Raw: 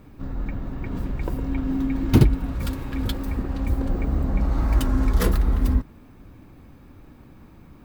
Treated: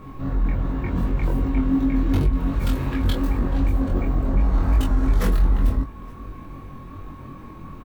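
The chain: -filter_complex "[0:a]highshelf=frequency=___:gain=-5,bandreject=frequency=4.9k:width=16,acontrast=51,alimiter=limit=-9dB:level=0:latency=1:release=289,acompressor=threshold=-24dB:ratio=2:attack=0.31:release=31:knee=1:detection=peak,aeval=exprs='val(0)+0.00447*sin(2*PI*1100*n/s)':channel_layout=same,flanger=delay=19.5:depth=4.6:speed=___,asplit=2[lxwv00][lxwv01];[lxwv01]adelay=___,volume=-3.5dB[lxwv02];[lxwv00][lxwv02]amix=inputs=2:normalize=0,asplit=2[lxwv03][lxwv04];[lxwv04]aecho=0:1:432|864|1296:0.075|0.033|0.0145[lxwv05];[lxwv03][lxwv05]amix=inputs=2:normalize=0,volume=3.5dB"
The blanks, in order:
4.8k, 2.7, 22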